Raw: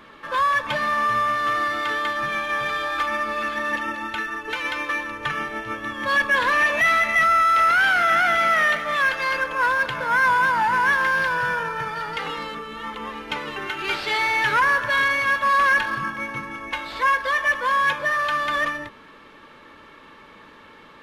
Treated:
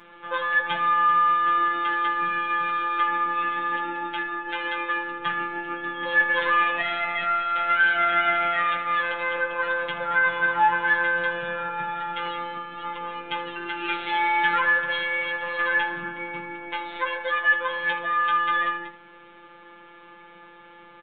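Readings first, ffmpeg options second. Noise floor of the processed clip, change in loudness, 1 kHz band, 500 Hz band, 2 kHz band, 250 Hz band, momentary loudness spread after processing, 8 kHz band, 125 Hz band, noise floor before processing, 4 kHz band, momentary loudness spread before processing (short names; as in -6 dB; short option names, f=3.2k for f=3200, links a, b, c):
-48 dBFS, -3.0 dB, -2.0 dB, -2.5 dB, -3.0 dB, -2.0 dB, 12 LU, under -40 dB, -6.5 dB, -47 dBFS, -3.5 dB, 12 LU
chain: -af "aresample=8000,aresample=44100,afftfilt=real='hypot(re,im)*cos(PI*b)':imag='0':win_size=1024:overlap=0.75,aecho=1:1:15|79:0.596|0.251"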